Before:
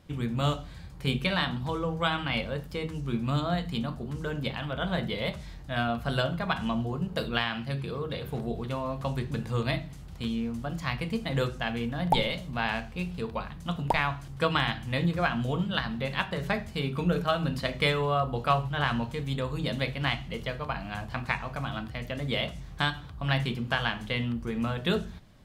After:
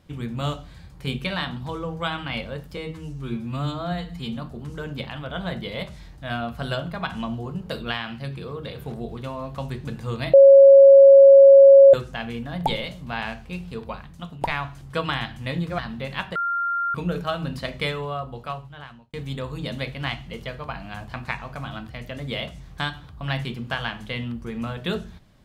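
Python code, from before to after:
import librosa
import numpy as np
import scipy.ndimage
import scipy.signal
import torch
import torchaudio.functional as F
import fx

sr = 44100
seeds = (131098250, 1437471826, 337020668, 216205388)

y = fx.edit(x, sr, fx.stretch_span(start_s=2.77, length_s=1.07, factor=1.5),
    fx.bleep(start_s=9.8, length_s=1.6, hz=550.0, db=-6.0),
    fx.fade_out_to(start_s=13.4, length_s=0.48, floor_db=-8.5),
    fx.cut(start_s=15.25, length_s=0.54),
    fx.bleep(start_s=16.36, length_s=0.59, hz=1390.0, db=-21.5),
    fx.fade_out_span(start_s=17.69, length_s=1.45), tone=tone)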